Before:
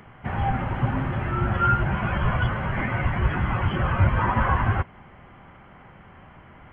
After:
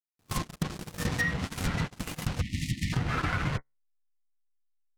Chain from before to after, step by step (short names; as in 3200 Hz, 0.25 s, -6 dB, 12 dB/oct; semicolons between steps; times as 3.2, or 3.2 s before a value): level-crossing sampler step -23.5 dBFS; de-hum 52.71 Hz, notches 31; gate -23 dBFS, range -41 dB; treble ducked by the level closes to 2200 Hz, closed at -19.5 dBFS; high shelf 2500 Hz +11.5 dB; compressor 10:1, threshold -25 dBFS, peak gain reduction 11.5 dB; spectral delete 3.26–3.95, 240–1300 Hz; speed mistake 33 rpm record played at 45 rpm